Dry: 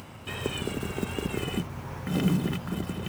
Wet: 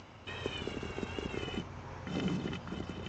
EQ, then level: steep low-pass 7000 Hz 72 dB/oct; bell 160 Hz -6 dB 0.89 oct; -6.0 dB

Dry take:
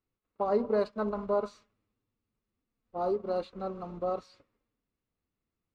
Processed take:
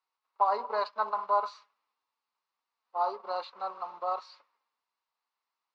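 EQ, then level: resonant high-pass 940 Hz, resonance Q 4.1; synth low-pass 4600 Hz, resonance Q 2.2; bell 3400 Hz -3 dB 0.2 oct; 0.0 dB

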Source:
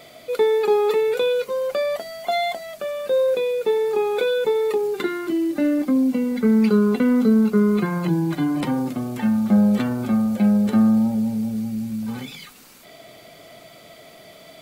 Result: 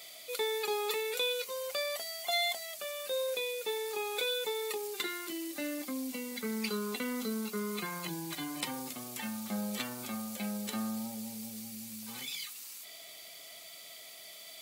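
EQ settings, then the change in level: pre-emphasis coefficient 0.97; bell 1500 Hz -5 dB 0.32 oct; high shelf 8900 Hz -7.5 dB; +6.5 dB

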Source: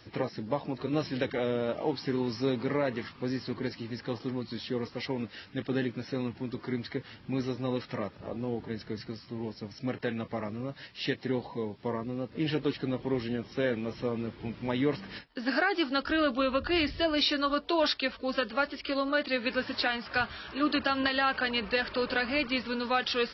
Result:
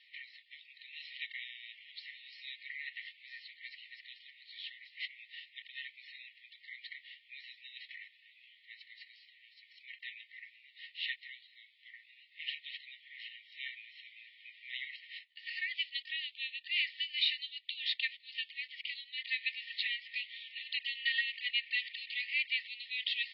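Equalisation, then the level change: brick-wall FIR high-pass 1800 Hz; steep low-pass 3900 Hz 48 dB/oct; 0.0 dB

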